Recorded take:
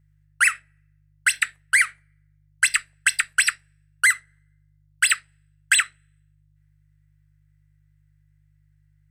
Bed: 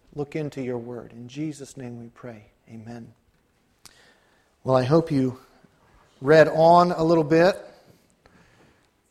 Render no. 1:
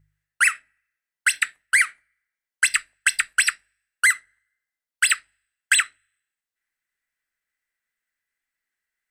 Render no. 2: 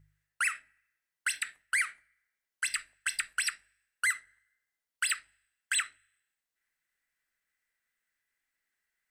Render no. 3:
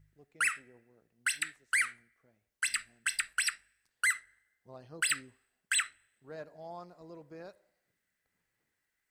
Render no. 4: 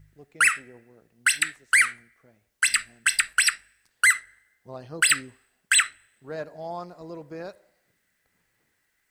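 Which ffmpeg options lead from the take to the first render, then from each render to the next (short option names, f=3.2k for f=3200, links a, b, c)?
-af "bandreject=f=50:t=h:w=4,bandreject=f=100:t=h:w=4,bandreject=f=150:t=h:w=4"
-af "acompressor=threshold=-21dB:ratio=6,alimiter=limit=-20dB:level=0:latency=1:release=43"
-filter_complex "[1:a]volume=-30.5dB[a];[0:a][a]amix=inputs=2:normalize=0"
-af "volume=10.5dB"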